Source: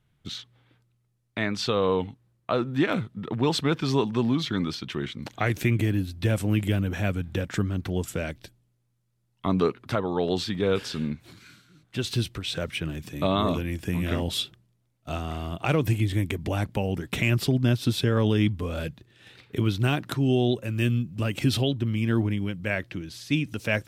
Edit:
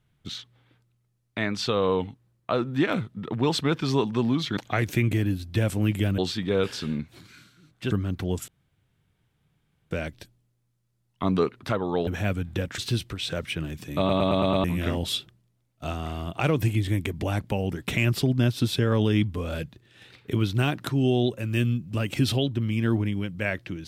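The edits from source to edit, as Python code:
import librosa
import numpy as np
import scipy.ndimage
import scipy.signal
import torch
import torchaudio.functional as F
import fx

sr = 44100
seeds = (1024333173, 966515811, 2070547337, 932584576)

y = fx.edit(x, sr, fx.cut(start_s=4.57, length_s=0.68),
    fx.swap(start_s=6.86, length_s=0.71, other_s=10.3, other_length_s=1.73),
    fx.insert_room_tone(at_s=8.14, length_s=1.43),
    fx.stutter_over(start_s=13.23, slice_s=0.11, count=6), tone=tone)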